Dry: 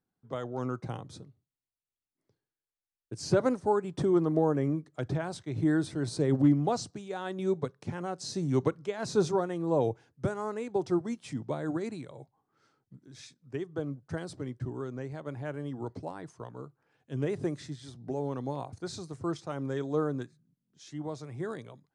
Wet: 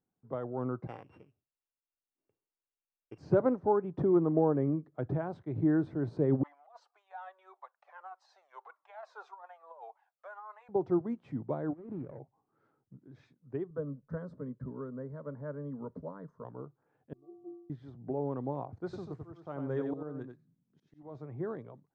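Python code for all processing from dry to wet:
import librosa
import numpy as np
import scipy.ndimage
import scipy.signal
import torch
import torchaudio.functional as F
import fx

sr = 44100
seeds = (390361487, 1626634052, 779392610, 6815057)

y = fx.chain(x, sr, fx.sample_sort(block=16),
    fx.peak_eq(hz=140.0, db=-12.0, octaves=2.1), at=(0.87, 3.18))
y = fx.chain(y, sr, fx.steep_highpass(hz=720.0, slope=36),
    fx.over_compress(threshold_db=-39.0, ratio=-0.5),
    fx.comb_cascade(direction='falling', hz=1.7), at=(6.43, 10.69))
y = fx.chain(y, sr, fx.median_filter(points=41),
    fx.air_absorb(metres=160.0),
    fx.over_compress(threshold_db=-40.0, ratio=-0.5), at=(11.73, 12.19))
y = fx.chain(y, sr, fx.low_shelf(hz=93.0, db=11.5),
    fx.fixed_phaser(hz=510.0, stages=8), at=(13.7, 16.45))
y = fx.chain(y, sr, fx.brickwall_lowpass(high_hz=1300.0),
    fx.stiff_resonator(f0_hz=340.0, decay_s=0.79, stiffness=0.03), at=(17.13, 17.7))
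y = fx.chain(y, sr, fx.high_shelf(hz=2300.0, db=8.0),
    fx.auto_swell(attack_ms=460.0),
    fx.echo_single(ms=91, db=-6.0), at=(18.84, 21.15))
y = scipy.signal.sosfilt(scipy.signal.butter(2, 1100.0, 'lowpass', fs=sr, output='sos'), y)
y = fx.low_shelf(y, sr, hz=140.0, db=-3.5)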